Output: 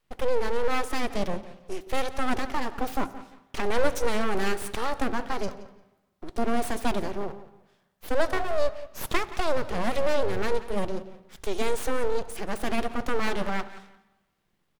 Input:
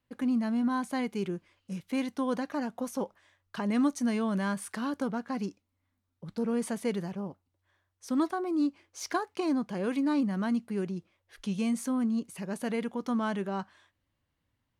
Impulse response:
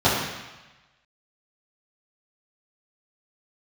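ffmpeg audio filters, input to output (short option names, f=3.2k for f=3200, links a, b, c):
-filter_complex "[0:a]asplit=2[a][b];[b]adelay=174,lowpass=f=5k:p=1,volume=-16dB,asplit=2[c][d];[d]adelay=174,lowpass=f=5k:p=1,volume=0.25[e];[a][c][e]amix=inputs=3:normalize=0,aeval=exprs='abs(val(0))':c=same,asplit=2[f][g];[1:a]atrim=start_sample=2205,adelay=58[h];[g][h]afir=irnorm=-1:irlink=0,volume=-36.5dB[i];[f][i]amix=inputs=2:normalize=0,volume=7.5dB"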